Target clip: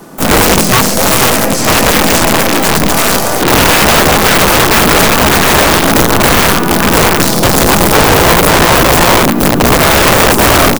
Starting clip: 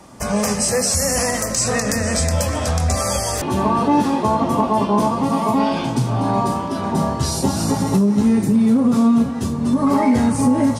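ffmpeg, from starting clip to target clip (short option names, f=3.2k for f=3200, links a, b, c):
-filter_complex "[0:a]asplit=2[a][b];[b]acrusher=bits=4:mix=0:aa=0.000001,volume=-9dB[c];[a][c]amix=inputs=2:normalize=0,aexciter=amount=6.1:drive=2.9:freq=11k,acrossover=split=4700[d][e];[e]acompressor=threshold=-27dB:ratio=20[f];[d][f]amix=inputs=2:normalize=0,aecho=1:1:6:0.46,aeval=exprs='(tanh(7.94*val(0)+0.8)-tanh(0.8))/7.94':c=same,equalizer=f=74:t=o:w=1.6:g=-10,acontrast=41,equalizer=f=240:t=o:w=1.7:g=8,asplit=2[g][h];[h]adelay=200,highpass=300,lowpass=3.4k,asoftclip=type=hard:threshold=-13dB,volume=-17dB[i];[g][i]amix=inputs=2:normalize=0,asplit=4[j][k][l][m];[k]asetrate=35002,aresample=44100,atempo=1.25992,volume=-6dB[n];[l]asetrate=55563,aresample=44100,atempo=0.793701,volume=-2dB[o];[m]asetrate=66075,aresample=44100,atempo=0.66742,volume=-9dB[p];[j][n][o][p]amix=inputs=4:normalize=0,aeval=exprs='(mod(1.78*val(0)+1,2)-1)/1.78':c=same,volume=3.5dB"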